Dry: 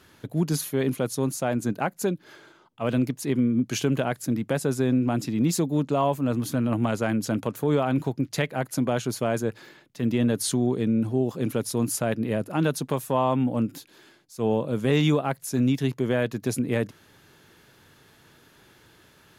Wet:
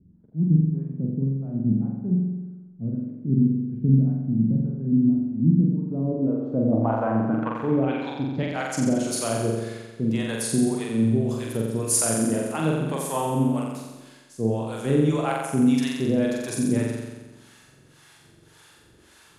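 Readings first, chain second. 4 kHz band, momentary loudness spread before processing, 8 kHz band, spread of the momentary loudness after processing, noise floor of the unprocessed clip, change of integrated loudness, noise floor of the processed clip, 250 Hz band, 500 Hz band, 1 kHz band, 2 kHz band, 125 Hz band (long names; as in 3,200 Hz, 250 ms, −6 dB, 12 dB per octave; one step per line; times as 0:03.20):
−2.5 dB, 5 LU, +4.0 dB, 9 LU, −57 dBFS, +2.0 dB, −55 dBFS, +2.5 dB, −1.5 dB, −1.0 dB, −2.5 dB, +3.5 dB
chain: two-band tremolo in antiphase 1.8 Hz, depth 100%, crossover 580 Hz
low-pass filter sweep 190 Hz → 9,200 Hz, 0:05.66–0:08.92
on a send: flutter between parallel walls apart 7.6 metres, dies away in 1.2 s
on the sum: level +1.5 dB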